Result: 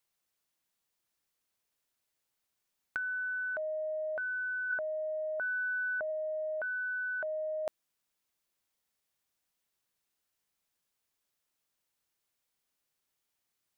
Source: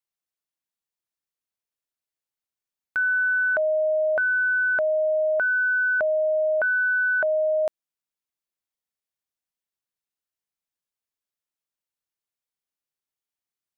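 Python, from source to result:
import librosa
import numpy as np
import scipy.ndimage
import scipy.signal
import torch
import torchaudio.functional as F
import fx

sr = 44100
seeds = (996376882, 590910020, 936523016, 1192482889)

y = fx.lowpass(x, sr, hz=1800.0, slope=24, at=(4.71, 6.09), fade=0.02)
y = fx.over_compress(y, sr, threshold_db=-29.0, ratio=-0.5)
y = y * librosa.db_to_amplitude(-2.5)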